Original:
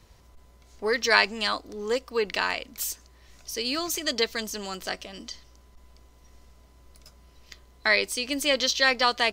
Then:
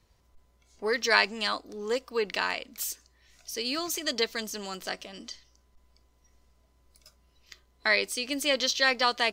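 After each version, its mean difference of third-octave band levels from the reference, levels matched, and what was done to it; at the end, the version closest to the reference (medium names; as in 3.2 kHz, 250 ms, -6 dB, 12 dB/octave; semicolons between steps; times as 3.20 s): 1.0 dB: spectral noise reduction 8 dB; trim -2.5 dB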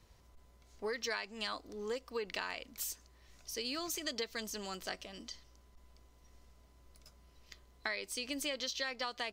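3.5 dB: compression 16:1, threshold -26 dBFS, peak gain reduction 13.5 dB; trim -8 dB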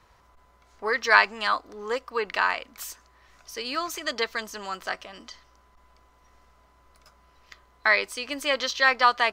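5.0 dB: peaking EQ 1.2 kHz +14.5 dB 2 oct; trim -8 dB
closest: first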